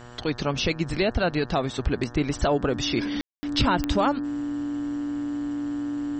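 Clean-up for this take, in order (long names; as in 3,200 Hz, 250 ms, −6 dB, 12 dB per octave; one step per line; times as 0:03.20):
click removal
hum removal 121 Hz, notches 15
notch filter 290 Hz, Q 30
ambience match 0:03.21–0:03.43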